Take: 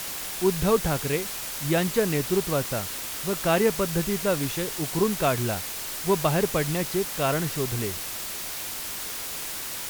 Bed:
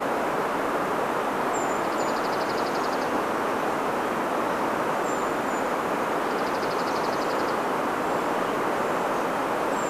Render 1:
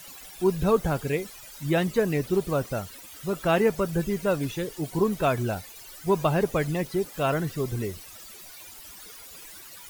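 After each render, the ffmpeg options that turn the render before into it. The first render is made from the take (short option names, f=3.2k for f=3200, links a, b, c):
-af "afftdn=nr=16:nf=-34"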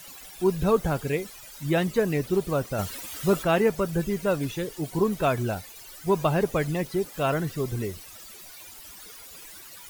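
-filter_complex "[0:a]asplit=3[a][b][c];[a]afade=t=out:st=2.78:d=0.02[d];[b]acontrast=82,afade=t=in:st=2.78:d=0.02,afade=t=out:st=3.42:d=0.02[e];[c]afade=t=in:st=3.42:d=0.02[f];[d][e][f]amix=inputs=3:normalize=0"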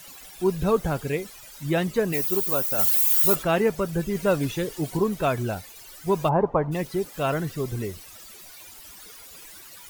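-filter_complex "[0:a]asplit=3[a][b][c];[a]afade=t=out:st=2.12:d=0.02[d];[b]aemphasis=mode=production:type=bsi,afade=t=in:st=2.12:d=0.02,afade=t=out:st=3.34:d=0.02[e];[c]afade=t=in:st=3.34:d=0.02[f];[d][e][f]amix=inputs=3:normalize=0,asplit=3[g][h][i];[g]afade=t=out:st=6.28:d=0.02[j];[h]lowpass=f=950:t=q:w=4.8,afade=t=in:st=6.28:d=0.02,afade=t=out:st=6.71:d=0.02[k];[i]afade=t=in:st=6.71:d=0.02[l];[j][k][l]amix=inputs=3:normalize=0,asplit=3[m][n][o];[m]atrim=end=4.152[p];[n]atrim=start=4.148:end=4.972,asetpts=PTS-STARTPTS,volume=3dB[q];[o]atrim=start=4.968[r];[p][q]acrossfade=d=0.004:c1=hsin:c2=hsin[s];[s][r]acrossfade=d=0.004:c1=hsin:c2=hsin"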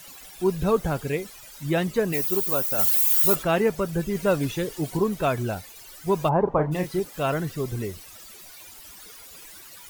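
-filter_complex "[0:a]asettb=1/sr,asplit=3[a][b][c];[a]atrim=end=6.444[d];[b]atrim=start=6.44:end=7,asetpts=PTS-STARTPTS,afade=t=in:d=0.004:c=qsin,afade=t=out:st=0.556:d=0.004:c=qsin,asplit=2[e][f];[f]adelay=33,volume=-7dB[g];[e][g]amix=inputs=2:normalize=0,atrim=end_sample=24696[h];[c]atrim=start=6.996[i];[d][h]acrossfade=d=0.004:c1=hsin:c2=qsin[j];[j][i]acrossfade=d=0.004:c1=qsin:c2=hsin"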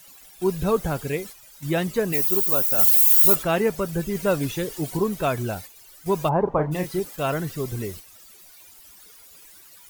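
-af "agate=range=-7dB:threshold=-39dB:ratio=16:detection=peak,highshelf=f=7k:g=5"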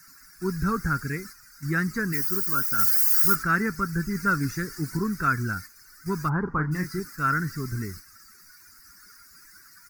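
-af "firequalizer=gain_entry='entry(260,0);entry(610,-24);entry(1400,11);entry(2000,1);entry(3200,-29);entry(4800,4);entry(7300,-5)':delay=0.05:min_phase=1"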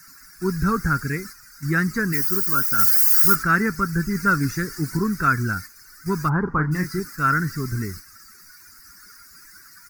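-af "volume=4.5dB"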